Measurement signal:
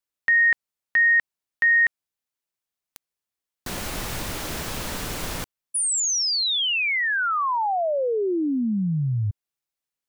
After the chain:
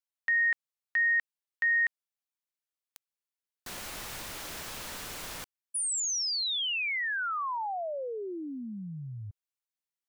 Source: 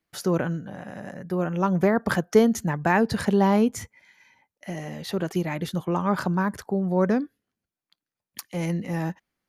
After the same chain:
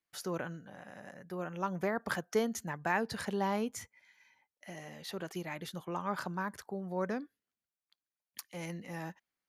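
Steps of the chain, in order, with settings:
low-shelf EQ 490 Hz −9.5 dB
level −7.5 dB

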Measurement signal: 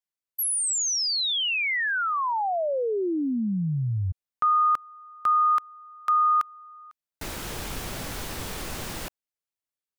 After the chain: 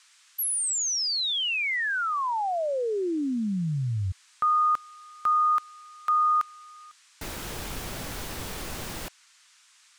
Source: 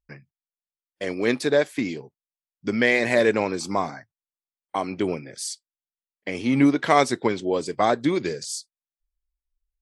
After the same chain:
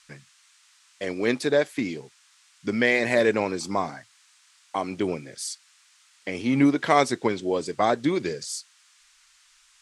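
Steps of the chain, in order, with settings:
noise in a band 1,100–8,700 Hz −58 dBFS
level −1.5 dB

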